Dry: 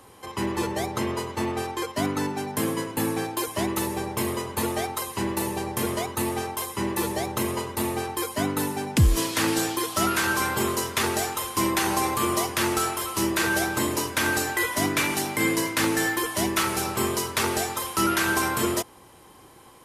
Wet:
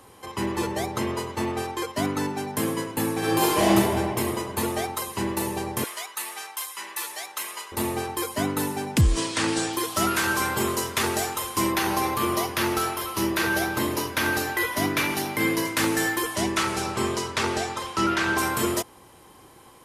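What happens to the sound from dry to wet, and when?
3.18–3.7 reverb throw, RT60 2.2 s, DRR -8 dB
5.84–7.72 HPF 1300 Hz
9.01–9.73 elliptic low-pass 9100 Hz, stop band 80 dB
11.72–15.65 bell 7900 Hz -9.5 dB 0.46 oct
16.35–18.37 LPF 9000 Hz -> 4900 Hz

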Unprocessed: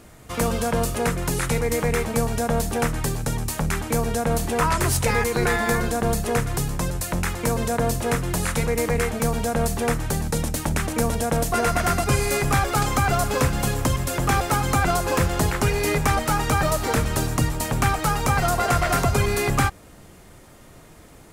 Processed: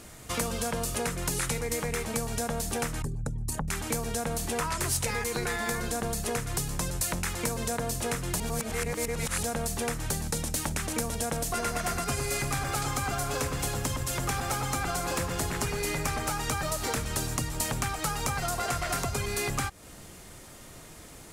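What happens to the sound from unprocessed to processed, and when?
3.02–3.68 formant sharpening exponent 2
8.4–9.43 reverse
11.46–16.32 echo with dull and thin repeats by turns 0.108 s, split 2000 Hz, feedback 61%, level -4 dB
whole clip: compressor, threshold -27 dBFS; bell 7400 Hz +7.5 dB 2.8 oct; gain -2 dB

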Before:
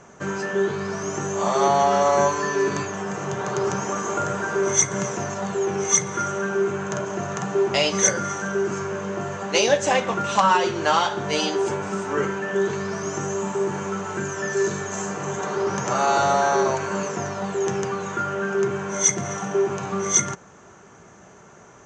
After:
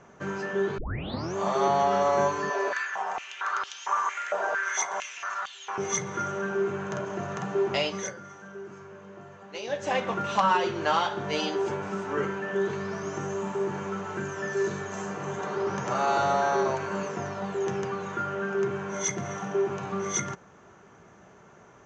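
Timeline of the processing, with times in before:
0.78 tape start 0.57 s
2.5–5.78 stepped high-pass 4.4 Hz 640–3300 Hz
7.74–10.04 dip -12.5 dB, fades 0.42 s
whole clip: LPF 4600 Hz 12 dB/oct; gain -5 dB

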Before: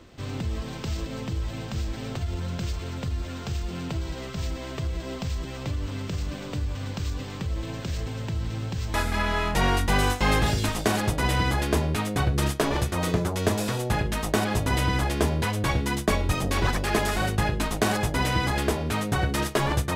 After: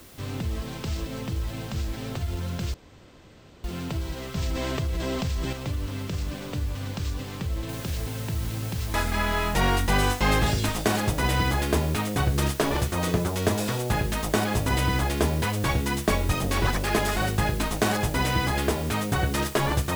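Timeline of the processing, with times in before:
2.74–3.64 room tone
4.35–5.53 fast leveller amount 70%
7.69 noise floor step -52 dB -43 dB

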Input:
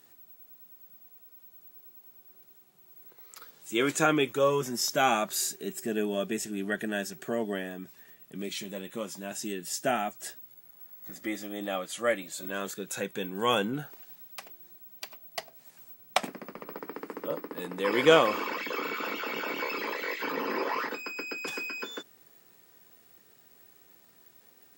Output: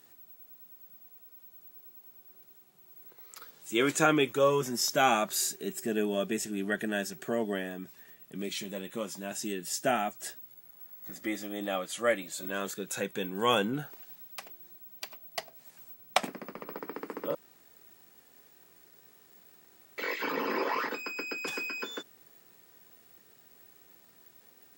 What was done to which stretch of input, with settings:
17.35–19.98 room tone

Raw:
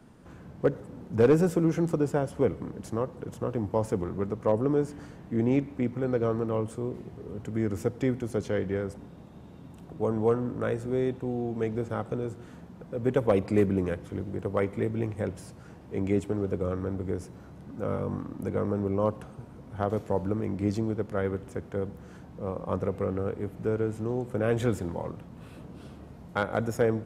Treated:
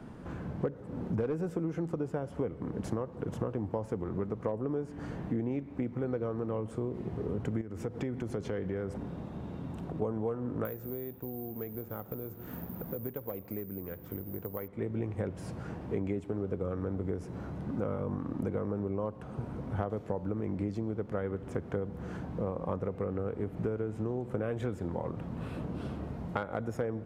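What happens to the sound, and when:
7.61–10.02 compressor 2.5:1, threshold -41 dBFS
10.65–14.68 careless resampling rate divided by 3×, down none, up zero stuff
whole clip: compressor 12:1, threshold -37 dBFS; high shelf 3900 Hz -11.5 dB; gain +7.5 dB

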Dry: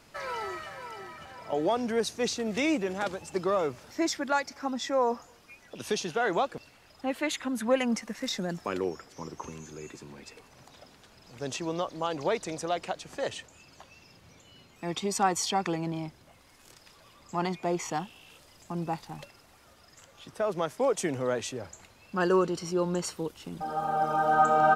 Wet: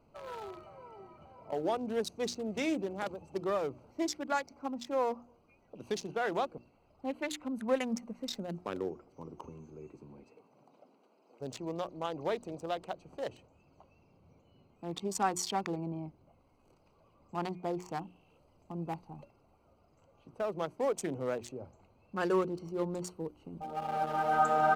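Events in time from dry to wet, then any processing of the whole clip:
10.23–11.4 HPF 120 Hz -> 320 Hz 24 dB/oct
whole clip: Wiener smoothing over 25 samples; high shelf 10000 Hz +8 dB; notches 60/120/180/240/300/360 Hz; gain -4.5 dB

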